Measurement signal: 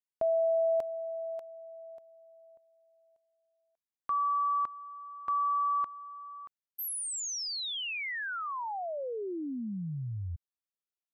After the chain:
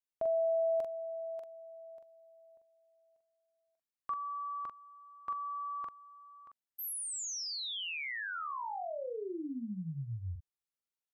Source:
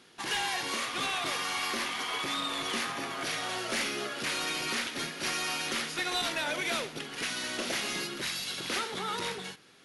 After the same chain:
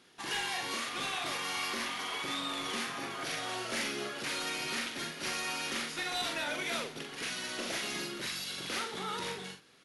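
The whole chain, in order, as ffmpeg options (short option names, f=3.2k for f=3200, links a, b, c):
-filter_complex "[0:a]asplit=2[a][b];[b]adelay=43,volume=-5dB[c];[a][c]amix=inputs=2:normalize=0,volume=-4.5dB"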